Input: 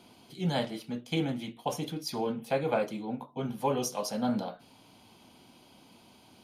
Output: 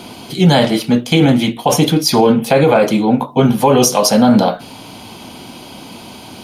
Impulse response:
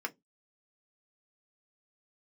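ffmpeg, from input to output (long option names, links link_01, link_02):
-af "alimiter=level_in=24.5dB:limit=-1dB:release=50:level=0:latency=1,volume=-1dB"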